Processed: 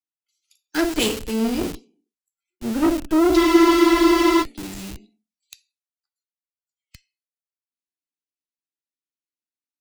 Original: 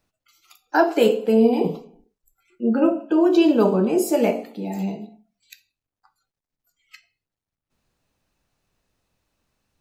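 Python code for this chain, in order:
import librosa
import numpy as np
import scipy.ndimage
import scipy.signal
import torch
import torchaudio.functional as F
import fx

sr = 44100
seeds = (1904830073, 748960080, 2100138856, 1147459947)

p1 = fx.ladder_highpass(x, sr, hz=240.0, resonance_pct=40)
p2 = fx.band_shelf(p1, sr, hz=730.0, db=-12.5, octaves=1.7)
p3 = fx.cheby_harmonics(p2, sr, harmonics=(5, 7, 8), levels_db=(-12, -29, -16), full_scale_db=-10.0)
p4 = scipy.signal.sosfilt(scipy.signal.ellip(4, 1.0, 40, 11000.0, 'lowpass', fs=sr, output='sos'), p3)
p5 = fx.schmitt(p4, sr, flips_db=-33.5)
p6 = p4 + (p5 * librosa.db_to_amplitude(-5.0))
p7 = fx.high_shelf(p6, sr, hz=3000.0, db=9.5)
p8 = fx.spec_freeze(p7, sr, seeds[0], at_s=3.38, hold_s=1.04)
y = fx.band_widen(p8, sr, depth_pct=70)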